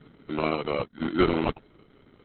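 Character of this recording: aliases and images of a low sample rate 1.7 kHz, jitter 0%; Opus

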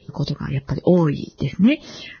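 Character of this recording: phasing stages 4, 1.7 Hz, lowest notch 630–2700 Hz; Vorbis

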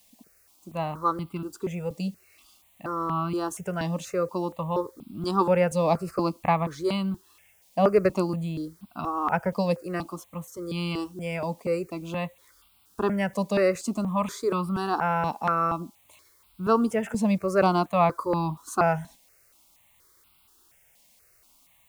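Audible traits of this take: a quantiser's noise floor 10-bit, dither triangular; notches that jump at a steady rate 4.2 Hz 370–1800 Hz

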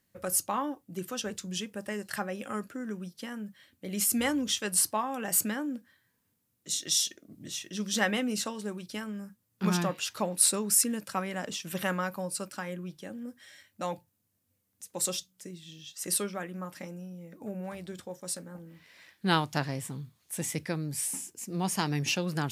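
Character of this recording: noise floor -76 dBFS; spectral tilt -3.5 dB/octave

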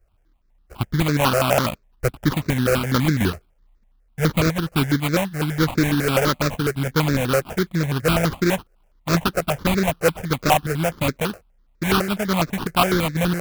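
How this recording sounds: aliases and images of a low sample rate 1.9 kHz, jitter 20%; notches that jump at a steady rate 12 Hz 940–3000 Hz

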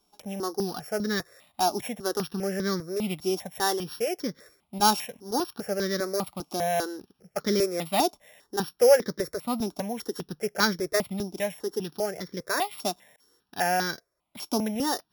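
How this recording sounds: a buzz of ramps at a fixed pitch in blocks of 8 samples; notches that jump at a steady rate 5 Hz 500–2700 Hz

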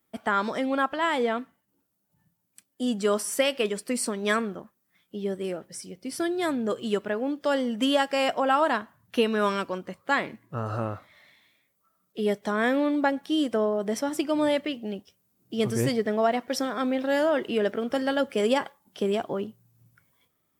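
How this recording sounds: noise floor -75 dBFS; spectral tilt -4.5 dB/octave

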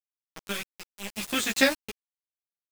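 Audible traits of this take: random-step tremolo 3.3 Hz, depth 75%; a quantiser's noise floor 6-bit, dither none; a shimmering, thickened sound

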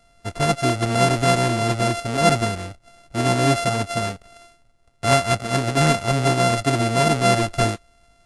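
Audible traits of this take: a buzz of ramps at a fixed pitch in blocks of 64 samples; AAC

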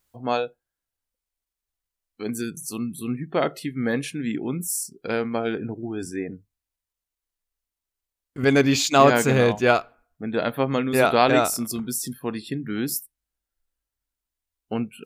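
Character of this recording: noise floor -88 dBFS; spectral tilt -4.5 dB/octave

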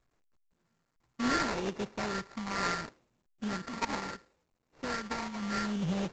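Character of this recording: a buzz of ramps at a fixed pitch in blocks of 32 samples; phasing stages 12, 0.71 Hz, lowest notch 500–1500 Hz; aliases and images of a low sample rate 3.2 kHz, jitter 20%; µ-law

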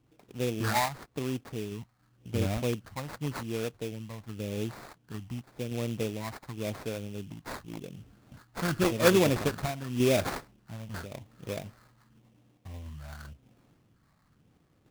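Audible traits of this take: phasing stages 4, 0.9 Hz, lowest notch 390–4000 Hz; aliases and images of a low sample rate 3 kHz, jitter 20%; random-step tremolo

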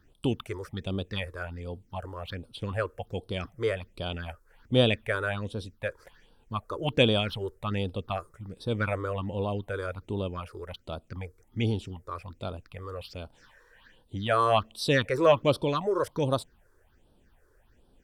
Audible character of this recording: phasing stages 6, 1.3 Hz, lowest notch 190–2000 Hz

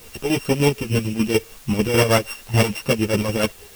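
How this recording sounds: a buzz of ramps at a fixed pitch in blocks of 16 samples; chopped level 6.7 Hz, depth 60%, duty 55%; a quantiser's noise floor 8-bit, dither triangular; a shimmering, thickened sound

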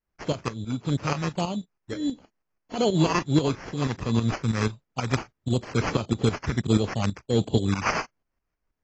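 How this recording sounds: phasing stages 2, 1.5 Hz, lowest notch 670–1700 Hz; tremolo saw up 6.2 Hz, depth 70%; aliases and images of a low sample rate 3.7 kHz, jitter 0%; AAC

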